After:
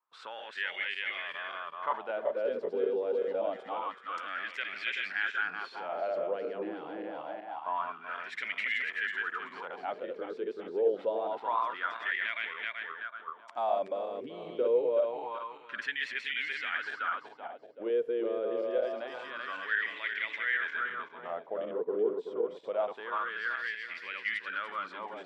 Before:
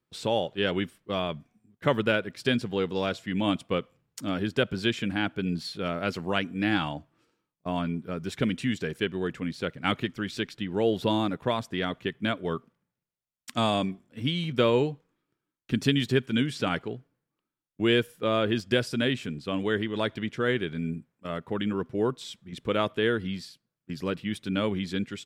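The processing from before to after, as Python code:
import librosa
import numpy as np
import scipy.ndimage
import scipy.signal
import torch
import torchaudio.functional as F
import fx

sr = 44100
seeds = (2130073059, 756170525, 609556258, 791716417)

p1 = fx.reverse_delay_fb(x, sr, ms=190, feedback_pct=62, wet_db=-2)
p2 = fx.weighting(p1, sr, curve='A')
p3 = fx.over_compress(p2, sr, threshold_db=-34.0, ratio=-1.0)
p4 = p2 + (p3 * 10.0 ** (-1.0 / 20.0))
p5 = fx.wah_lfo(p4, sr, hz=0.26, low_hz=430.0, high_hz=2100.0, q=5.7)
y = p5 * 10.0 ** (2.0 / 20.0)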